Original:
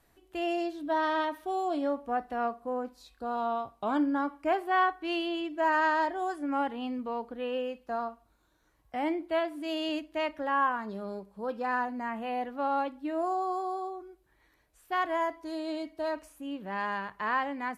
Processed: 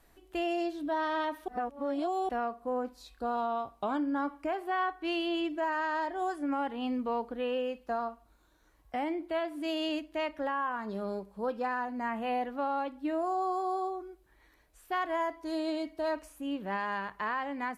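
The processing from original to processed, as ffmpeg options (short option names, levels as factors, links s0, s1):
-filter_complex "[0:a]asplit=3[s0][s1][s2];[s0]atrim=end=1.482[s3];[s1]atrim=start=1.478:end=2.292,asetpts=PTS-STARTPTS,areverse[s4];[s2]atrim=start=2.288[s5];[s3][s4]acrossfade=d=0.004:c1=hsin:c2=hsin[s6];[s6][s5]acrossfade=d=0.004:c1=hsin:c2=hsin,lowshelf=f=200:g=6,alimiter=level_in=1.26:limit=0.0631:level=0:latency=1:release=314,volume=0.794,equalizer=f=110:t=o:w=1.7:g=-7.5,volume=1.33"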